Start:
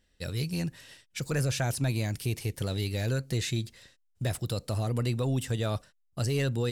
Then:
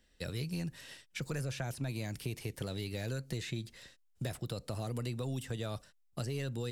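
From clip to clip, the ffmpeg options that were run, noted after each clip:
-filter_complex "[0:a]equalizer=f=93:t=o:w=0.7:g=-6.5,acrossover=split=130|3300[a][b][c];[a]acompressor=threshold=-43dB:ratio=4[d];[b]acompressor=threshold=-40dB:ratio=4[e];[c]acompressor=threshold=-52dB:ratio=4[f];[d][e][f]amix=inputs=3:normalize=0,volume=1dB"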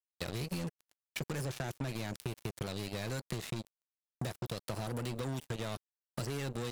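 -af "acrusher=bits=5:mix=0:aa=0.5,acompressor=threshold=-37dB:ratio=6,volume=3.5dB"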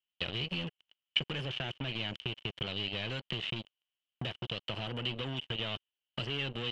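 -af "lowpass=f=3k:t=q:w=13,volume=-1.5dB"

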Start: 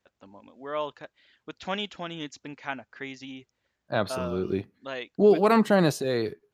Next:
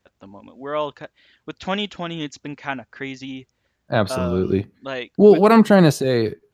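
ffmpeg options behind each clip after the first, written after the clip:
-af "lowshelf=f=220:g=6.5,volume=6dB"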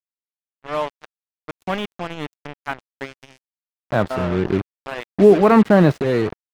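-filter_complex "[0:a]acrusher=bits=3:mix=0:aa=0.5,acrossover=split=2900[a][b];[b]acompressor=threshold=-46dB:ratio=4:attack=1:release=60[c];[a][c]amix=inputs=2:normalize=0"

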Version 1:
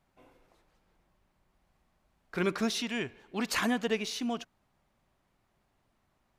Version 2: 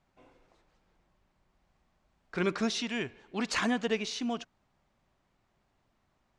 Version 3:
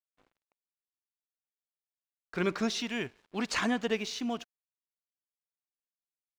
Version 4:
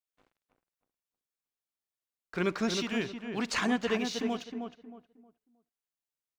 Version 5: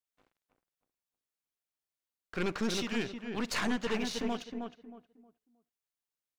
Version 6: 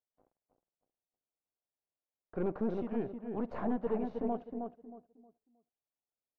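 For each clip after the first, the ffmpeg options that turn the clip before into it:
-af "lowpass=f=8k:w=0.5412,lowpass=f=8k:w=1.3066"
-af "aeval=exprs='sgn(val(0))*max(abs(val(0))-0.00158,0)':c=same"
-filter_complex "[0:a]asplit=2[a][b];[b]adelay=314,lowpass=f=1.4k:p=1,volume=-5dB,asplit=2[c][d];[d]adelay=314,lowpass=f=1.4k:p=1,volume=0.3,asplit=2[e][f];[f]adelay=314,lowpass=f=1.4k:p=1,volume=0.3,asplit=2[g][h];[h]adelay=314,lowpass=f=1.4k:p=1,volume=0.3[i];[a][c][e][g][i]amix=inputs=5:normalize=0"
-af "aeval=exprs='(tanh(28.2*val(0)+0.7)-tanh(0.7))/28.2':c=same,volume=2.5dB"
-af "lowpass=f=690:t=q:w=1.7,volume=-2dB"

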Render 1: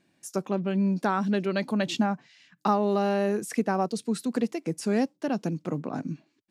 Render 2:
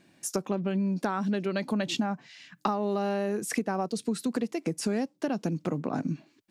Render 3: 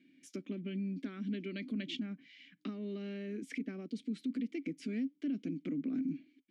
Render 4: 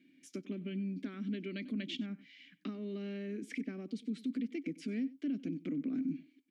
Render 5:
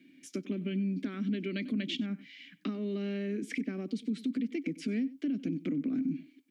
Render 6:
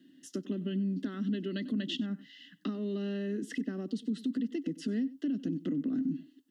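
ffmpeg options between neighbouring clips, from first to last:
-af "acompressor=threshold=-33dB:ratio=6,volume=7dB"
-filter_complex "[0:a]asplit=3[a][b][c];[a]bandpass=f=270:t=q:w=8,volume=0dB[d];[b]bandpass=f=2.29k:t=q:w=8,volume=-6dB[e];[c]bandpass=f=3.01k:t=q:w=8,volume=-9dB[f];[d][e][f]amix=inputs=3:normalize=0,alimiter=level_in=10dB:limit=-24dB:level=0:latency=1:release=14,volume=-10dB,volume=4.5dB"
-af "aecho=1:1:95:0.106"
-filter_complex "[0:a]acrossover=split=170[a][b];[b]acompressor=threshold=-37dB:ratio=6[c];[a][c]amix=inputs=2:normalize=0,volume=6.5dB"
-af "asuperstop=centerf=2300:order=8:qfactor=4.1"

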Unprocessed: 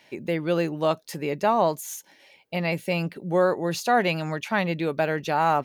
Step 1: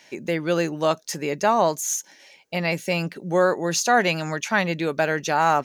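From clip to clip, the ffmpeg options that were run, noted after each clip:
-af "equalizer=f=100:t=o:w=0.67:g=-7,equalizer=f=1.6k:t=o:w=0.67:g=4,equalizer=f=6.3k:t=o:w=0.67:g=12,volume=1.5dB"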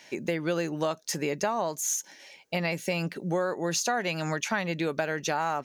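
-af "acompressor=threshold=-25dB:ratio=6"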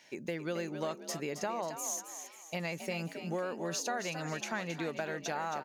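-filter_complex "[0:a]asplit=6[a][b][c][d][e][f];[b]adelay=270,afreqshift=51,volume=-9dB[g];[c]adelay=540,afreqshift=102,volume=-16.7dB[h];[d]adelay=810,afreqshift=153,volume=-24.5dB[i];[e]adelay=1080,afreqshift=204,volume=-32.2dB[j];[f]adelay=1350,afreqshift=255,volume=-40dB[k];[a][g][h][i][j][k]amix=inputs=6:normalize=0,volume=-8dB"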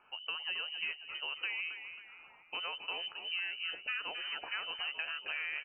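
-af "lowpass=f=2.7k:t=q:w=0.5098,lowpass=f=2.7k:t=q:w=0.6013,lowpass=f=2.7k:t=q:w=0.9,lowpass=f=2.7k:t=q:w=2.563,afreqshift=-3200,volume=-2.5dB"

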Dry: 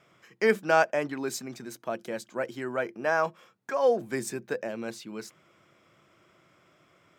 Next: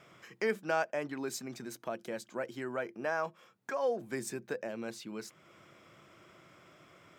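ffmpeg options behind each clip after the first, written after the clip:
-af "acompressor=threshold=-54dB:ratio=1.5,volume=3.5dB"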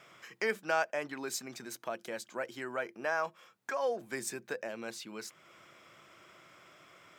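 -af "lowshelf=f=480:g=-10,volume=3.5dB"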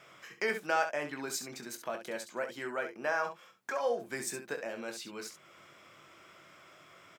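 -af "aecho=1:1:21|67:0.398|0.355"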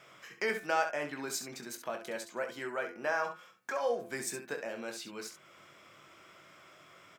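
-af "bandreject=f=84.48:t=h:w=4,bandreject=f=168.96:t=h:w=4,bandreject=f=253.44:t=h:w=4,bandreject=f=337.92:t=h:w=4,bandreject=f=422.4:t=h:w=4,bandreject=f=506.88:t=h:w=4,bandreject=f=591.36:t=h:w=4,bandreject=f=675.84:t=h:w=4,bandreject=f=760.32:t=h:w=4,bandreject=f=844.8:t=h:w=4,bandreject=f=929.28:t=h:w=4,bandreject=f=1.01376k:t=h:w=4,bandreject=f=1.09824k:t=h:w=4,bandreject=f=1.18272k:t=h:w=4,bandreject=f=1.2672k:t=h:w=4,bandreject=f=1.35168k:t=h:w=4,bandreject=f=1.43616k:t=h:w=4,bandreject=f=1.52064k:t=h:w=4,bandreject=f=1.60512k:t=h:w=4,bandreject=f=1.6896k:t=h:w=4,bandreject=f=1.77408k:t=h:w=4,bandreject=f=1.85856k:t=h:w=4,bandreject=f=1.94304k:t=h:w=4,bandreject=f=2.02752k:t=h:w=4,bandreject=f=2.112k:t=h:w=4,bandreject=f=2.19648k:t=h:w=4,bandreject=f=2.28096k:t=h:w=4,bandreject=f=2.36544k:t=h:w=4,bandreject=f=2.44992k:t=h:w=4,bandreject=f=2.5344k:t=h:w=4,bandreject=f=2.61888k:t=h:w=4,bandreject=f=2.70336k:t=h:w=4,bandreject=f=2.78784k:t=h:w=4"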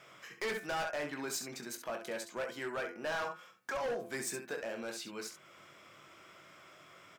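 -af "asoftclip=type=hard:threshold=-32.5dB"

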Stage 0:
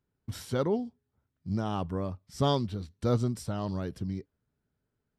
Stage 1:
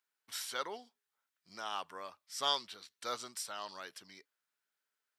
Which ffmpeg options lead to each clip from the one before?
-af "highpass=1.4k,volume=4dB"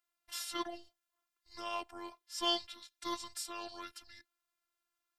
-af "afreqshift=-200,afftfilt=real='hypot(re,im)*cos(PI*b)':imag='0':win_size=512:overlap=0.75,volume=3.5dB"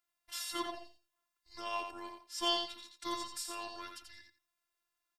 -af "aecho=1:1:86|172|258:0.501|0.0902|0.0162"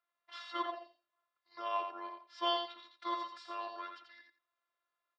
-af "highpass=380,equalizer=f=560:t=q:w=4:g=9,equalizer=f=1.2k:t=q:w=4:g=8,equalizer=f=2.7k:t=q:w=4:g=-5,lowpass=f=3.6k:w=0.5412,lowpass=f=3.6k:w=1.3066"

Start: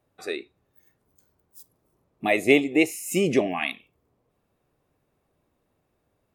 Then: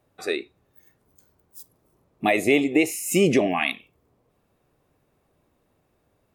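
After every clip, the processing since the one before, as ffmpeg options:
-af "alimiter=level_in=12dB:limit=-1dB:release=50:level=0:latency=1,volume=-7.5dB"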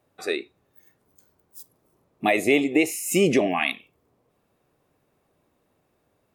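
-af "lowshelf=f=87:g=-9"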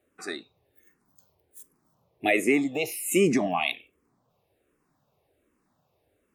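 -filter_complex "[0:a]asplit=2[a][b];[b]afreqshift=-1.3[c];[a][c]amix=inputs=2:normalize=1"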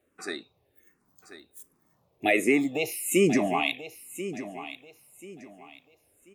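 -af "aecho=1:1:1037|2074|3111:0.224|0.0672|0.0201"

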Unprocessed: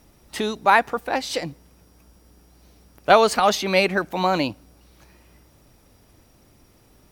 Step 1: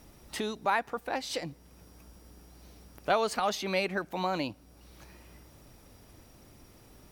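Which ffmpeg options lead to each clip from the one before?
-af "acompressor=threshold=-46dB:ratio=1.5"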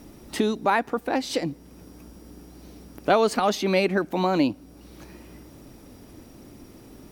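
-af "equalizer=f=280:w=1:g=10,volume=4.5dB"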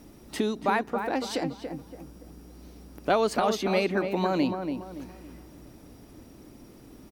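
-filter_complex "[0:a]asplit=2[a][b];[b]adelay=284,lowpass=f=1.6k:p=1,volume=-6dB,asplit=2[c][d];[d]adelay=284,lowpass=f=1.6k:p=1,volume=0.37,asplit=2[e][f];[f]adelay=284,lowpass=f=1.6k:p=1,volume=0.37,asplit=2[g][h];[h]adelay=284,lowpass=f=1.6k:p=1,volume=0.37[i];[a][c][e][g][i]amix=inputs=5:normalize=0,volume=-4dB"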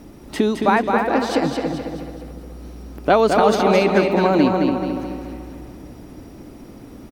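-af "highshelf=f=3.4k:g=-7,aecho=1:1:215|430|645|860|1075|1290:0.562|0.253|0.114|0.0512|0.0231|0.0104,volume=9dB"

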